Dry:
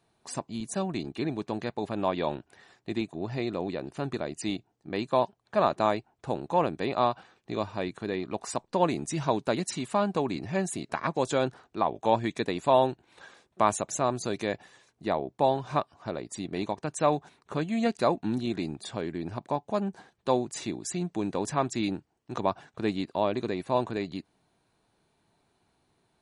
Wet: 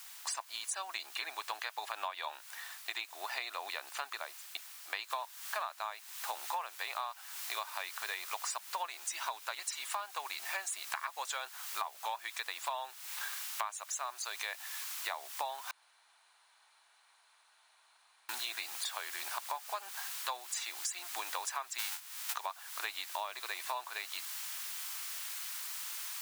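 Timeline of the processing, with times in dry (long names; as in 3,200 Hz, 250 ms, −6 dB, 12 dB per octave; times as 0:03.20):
0:04.03–0:04.55: fade out and dull
0:05.10: noise floor change −60 dB −51 dB
0:15.71–0:18.29: fill with room tone
0:21.78–0:22.32: spectral envelope flattened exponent 0.3
whole clip: high-pass filter 960 Hz 24 dB per octave; downward compressor 16 to 1, threshold −44 dBFS; level +9.5 dB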